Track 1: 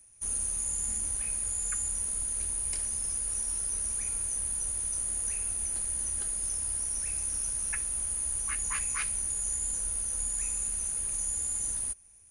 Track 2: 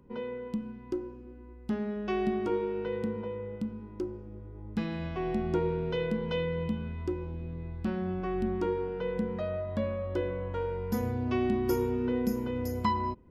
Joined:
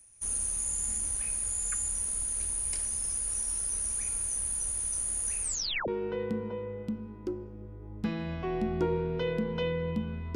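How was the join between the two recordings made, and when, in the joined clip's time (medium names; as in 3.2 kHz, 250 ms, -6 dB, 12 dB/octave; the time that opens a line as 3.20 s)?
track 1
5.42 s: tape stop 0.46 s
5.88 s: go over to track 2 from 2.61 s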